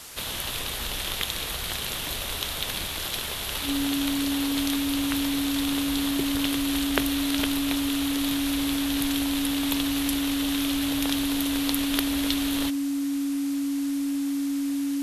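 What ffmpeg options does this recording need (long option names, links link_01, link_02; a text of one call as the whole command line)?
ffmpeg -i in.wav -af "adeclick=threshold=4,bandreject=frequency=280:width=30,afwtdn=0.0089" out.wav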